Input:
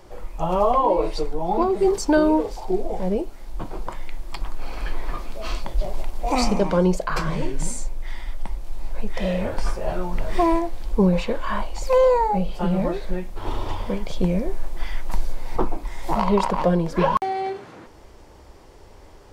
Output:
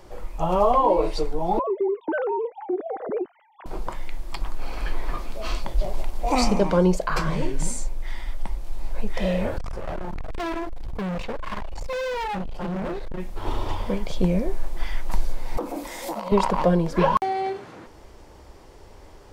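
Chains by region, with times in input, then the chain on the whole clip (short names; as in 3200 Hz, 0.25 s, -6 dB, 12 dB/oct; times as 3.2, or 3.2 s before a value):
1.59–3.66 sine-wave speech + compressor 4:1, threshold -22 dBFS
9.58–13.2 high shelf 3000 Hz -8.5 dB + hard clip -26.5 dBFS
15.57–16.32 tilt +3.5 dB/oct + compressor 16:1, threshold -32 dBFS + small resonant body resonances 280/510 Hz, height 17 dB, ringing for 35 ms
whole clip: dry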